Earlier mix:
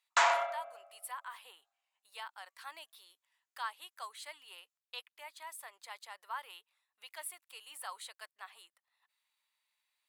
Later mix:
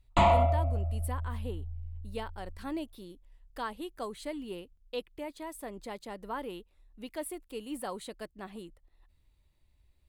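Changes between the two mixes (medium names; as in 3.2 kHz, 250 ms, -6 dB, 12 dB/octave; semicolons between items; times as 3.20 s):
background: add static phaser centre 1.6 kHz, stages 6; master: remove high-pass 950 Hz 24 dB/octave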